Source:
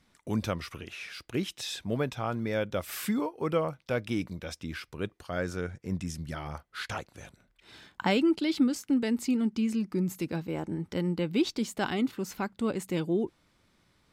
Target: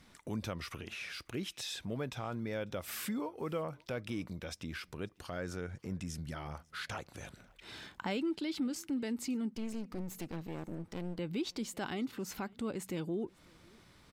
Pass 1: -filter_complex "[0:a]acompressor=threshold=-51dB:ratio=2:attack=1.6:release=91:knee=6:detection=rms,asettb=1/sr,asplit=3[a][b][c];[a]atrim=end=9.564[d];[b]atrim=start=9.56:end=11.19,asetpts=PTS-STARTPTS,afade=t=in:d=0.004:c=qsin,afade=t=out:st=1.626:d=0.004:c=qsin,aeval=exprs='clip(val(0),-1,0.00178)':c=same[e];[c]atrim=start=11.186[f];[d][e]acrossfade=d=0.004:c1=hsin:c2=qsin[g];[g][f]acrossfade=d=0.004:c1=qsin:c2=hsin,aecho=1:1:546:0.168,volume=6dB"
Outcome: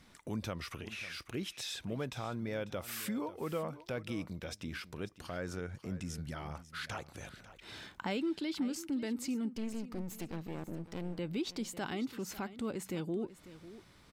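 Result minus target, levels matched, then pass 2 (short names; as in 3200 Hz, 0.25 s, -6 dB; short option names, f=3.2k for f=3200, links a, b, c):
echo-to-direct +12 dB
-filter_complex "[0:a]acompressor=threshold=-51dB:ratio=2:attack=1.6:release=91:knee=6:detection=rms,asettb=1/sr,asplit=3[a][b][c];[a]atrim=end=9.564[d];[b]atrim=start=9.56:end=11.19,asetpts=PTS-STARTPTS,afade=t=in:d=0.004:c=qsin,afade=t=out:st=1.626:d=0.004:c=qsin,aeval=exprs='clip(val(0),-1,0.00178)':c=same[e];[c]atrim=start=11.186[f];[d][e]acrossfade=d=0.004:c1=hsin:c2=qsin[g];[g][f]acrossfade=d=0.004:c1=qsin:c2=hsin,aecho=1:1:546:0.0422,volume=6dB"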